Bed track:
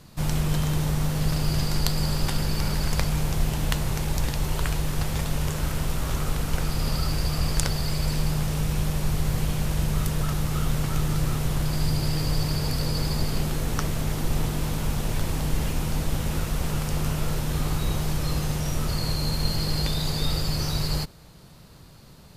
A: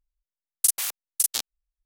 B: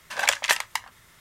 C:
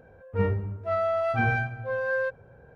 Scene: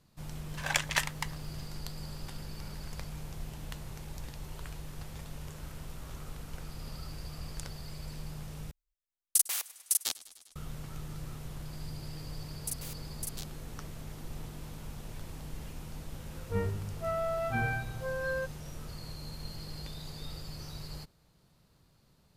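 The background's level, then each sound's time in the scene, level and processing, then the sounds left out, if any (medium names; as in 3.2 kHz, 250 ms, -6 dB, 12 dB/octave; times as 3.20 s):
bed track -17 dB
0.47 s: add B -8 dB
8.71 s: replace with A -5 dB + modulated delay 101 ms, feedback 74%, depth 54 cents, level -21 dB
12.03 s: add A -17 dB
16.16 s: add C -7 dB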